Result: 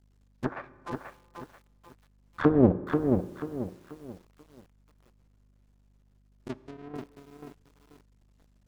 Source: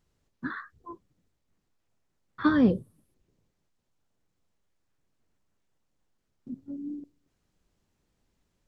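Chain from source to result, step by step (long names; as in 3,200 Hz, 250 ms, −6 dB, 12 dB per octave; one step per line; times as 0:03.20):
sub-harmonics by changed cycles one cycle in 2, muted
treble cut that deepens with the level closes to 520 Hz, closed at −31 dBFS
dynamic equaliser 750 Hz, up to +3 dB, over −44 dBFS, Q 1.1
transient designer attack +3 dB, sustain −6 dB
0:06.52–0:06.94: downward compressor 20 to 1, threshold −44 dBFS, peak gain reduction 12 dB
mains hum 50 Hz, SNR 30 dB
convolution reverb RT60 1.7 s, pre-delay 3 ms, DRR 16 dB
feedback echo at a low word length 486 ms, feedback 35%, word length 10 bits, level −5 dB
level +4 dB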